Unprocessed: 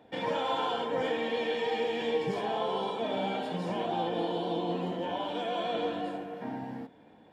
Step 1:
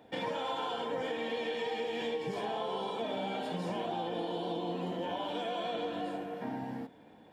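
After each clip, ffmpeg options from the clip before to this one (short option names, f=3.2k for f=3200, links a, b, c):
-af "highshelf=f=6.6k:g=6,acompressor=threshold=-32dB:ratio=6"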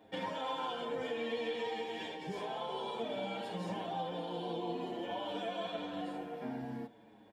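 -filter_complex "[0:a]asplit=2[a][b];[b]adelay=7,afreqshift=-0.54[c];[a][c]amix=inputs=2:normalize=1"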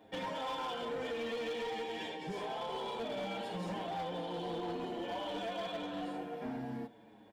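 -af "asoftclip=type=hard:threshold=-35.5dB,volume=1dB"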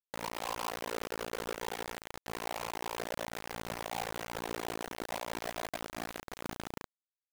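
-af "lowpass=f=1.2k:t=q:w=1.5,tremolo=f=57:d=0.947,acrusher=bits=5:mix=0:aa=0.000001,volume=1dB"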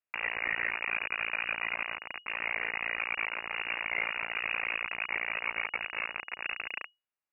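-af "lowpass=f=2.5k:t=q:w=0.5098,lowpass=f=2.5k:t=q:w=0.6013,lowpass=f=2.5k:t=q:w=0.9,lowpass=f=2.5k:t=q:w=2.563,afreqshift=-2900,volume=6dB"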